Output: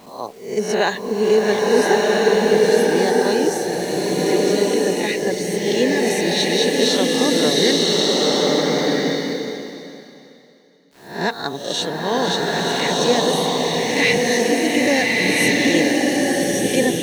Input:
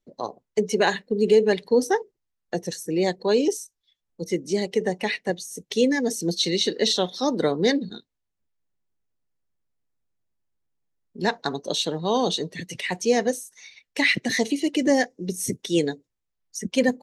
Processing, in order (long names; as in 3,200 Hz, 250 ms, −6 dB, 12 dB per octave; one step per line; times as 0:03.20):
peak hold with a rise ahead of every peak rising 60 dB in 0.52 s
bit reduction 8 bits
slow-attack reverb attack 1,410 ms, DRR −4 dB